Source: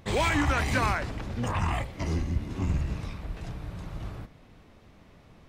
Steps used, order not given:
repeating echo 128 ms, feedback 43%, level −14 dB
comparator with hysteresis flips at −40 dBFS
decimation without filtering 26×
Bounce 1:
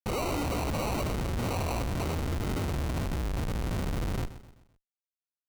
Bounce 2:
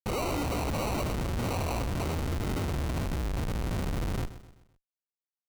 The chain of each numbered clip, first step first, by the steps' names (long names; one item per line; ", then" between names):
comparator with hysteresis, then repeating echo, then decimation without filtering
comparator with hysteresis, then decimation without filtering, then repeating echo